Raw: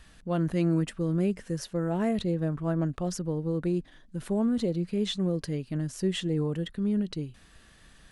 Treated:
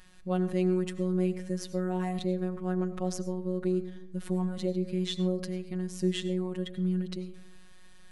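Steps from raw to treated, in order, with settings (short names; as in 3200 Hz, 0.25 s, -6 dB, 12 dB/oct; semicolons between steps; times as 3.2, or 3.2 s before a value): robotiser 183 Hz; on a send: reverb RT60 0.75 s, pre-delay 55 ms, DRR 13 dB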